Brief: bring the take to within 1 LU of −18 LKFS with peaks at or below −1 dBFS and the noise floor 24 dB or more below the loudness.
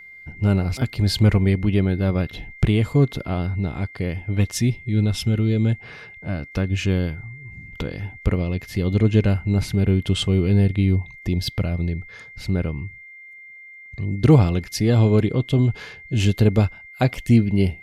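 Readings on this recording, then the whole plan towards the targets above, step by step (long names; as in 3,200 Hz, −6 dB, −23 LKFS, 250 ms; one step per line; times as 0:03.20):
interfering tone 2,100 Hz; level of the tone −40 dBFS; integrated loudness −21.0 LKFS; sample peak −2.5 dBFS; target loudness −18.0 LKFS
→ notch filter 2,100 Hz, Q 30
level +3 dB
brickwall limiter −1 dBFS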